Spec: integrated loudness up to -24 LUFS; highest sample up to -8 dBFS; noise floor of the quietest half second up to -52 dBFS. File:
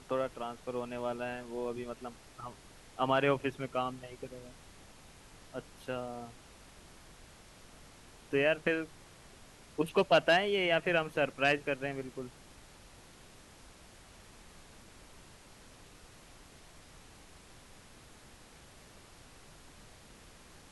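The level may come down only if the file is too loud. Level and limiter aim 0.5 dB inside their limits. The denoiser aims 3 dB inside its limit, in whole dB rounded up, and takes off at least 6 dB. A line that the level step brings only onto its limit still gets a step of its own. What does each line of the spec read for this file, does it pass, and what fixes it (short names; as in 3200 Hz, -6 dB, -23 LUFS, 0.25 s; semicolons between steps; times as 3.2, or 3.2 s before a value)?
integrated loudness -33.0 LUFS: OK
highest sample -14.0 dBFS: OK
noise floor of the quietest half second -56 dBFS: OK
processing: none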